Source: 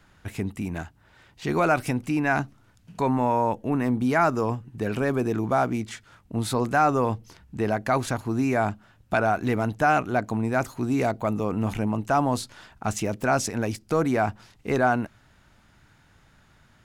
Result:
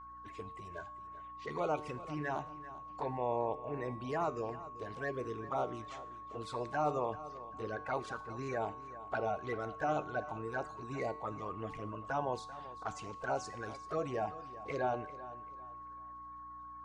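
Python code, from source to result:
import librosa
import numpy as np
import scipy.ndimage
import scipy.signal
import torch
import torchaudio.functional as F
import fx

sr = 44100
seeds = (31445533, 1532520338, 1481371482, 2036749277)

p1 = fx.spec_quant(x, sr, step_db=30)
p2 = fx.env_flanger(p1, sr, rest_ms=6.0, full_db=-19.0)
p3 = fx.add_hum(p2, sr, base_hz=60, snr_db=17)
p4 = fx.low_shelf_res(p3, sr, hz=350.0, db=-8.0, q=1.5)
p5 = fx.comb_fb(p4, sr, f0_hz=150.0, decay_s=0.71, harmonics='all', damping=0.0, mix_pct=60)
p6 = p5 + 10.0 ** (-46.0 / 20.0) * np.sin(2.0 * np.pi * 1100.0 * np.arange(len(p5)) / sr)
p7 = fx.air_absorb(p6, sr, metres=100.0)
p8 = p7 + fx.echo_feedback(p7, sr, ms=390, feedback_pct=31, wet_db=-16, dry=0)
y = p8 * librosa.db_to_amplitude(-1.5)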